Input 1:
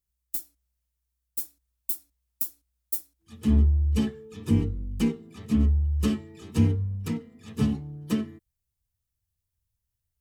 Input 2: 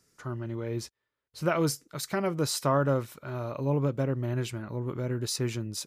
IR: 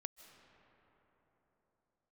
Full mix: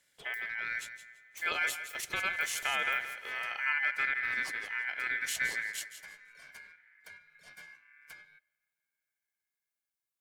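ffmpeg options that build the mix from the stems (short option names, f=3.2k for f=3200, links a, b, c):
-filter_complex "[0:a]acompressor=threshold=-42dB:ratio=2,highpass=f=230:w=0.5412,highpass=f=230:w=1.3066,acrossover=split=380|1000[a][b][c];[a]acompressor=threshold=-48dB:ratio=4[d];[b]acompressor=threshold=-56dB:ratio=4[e];[c]acompressor=threshold=-50dB:ratio=4[f];[d][e][f]amix=inputs=3:normalize=0,volume=-2.5dB,asplit=2[g][h];[h]volume=-16.5dB[i];[1:a]alimiter=limit=-19.5dB:level=0:latency=1:release=213,volume=-3dB,asplit=3[j][k][l];[k]volume=-4.5dB[m];[l]volume=-8.5dB[n];[2:a]atrim=start_sample=2205[o];[i][m]amix=inputs=2:normalize=0[p];[p][o]afir=irnorm=-1:irlink=0[q];[n]aecho=0:1:168|336|504|672:1|0.22|0.0484|0.0106[r];[g][j][q][r]amix=inputs=4:normalize=0,aeval=exprs='val(0)*sin(2*PI*1900*n/s)':c=same"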